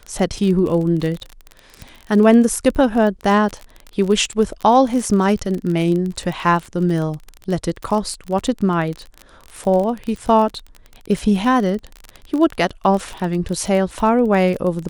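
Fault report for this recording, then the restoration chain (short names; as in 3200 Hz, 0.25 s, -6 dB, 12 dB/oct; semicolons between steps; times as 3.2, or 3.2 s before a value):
crackle 28/s -23 dBFS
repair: de-click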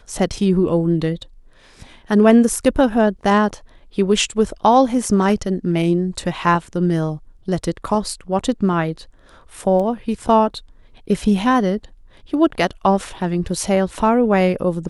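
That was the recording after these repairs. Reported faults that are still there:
none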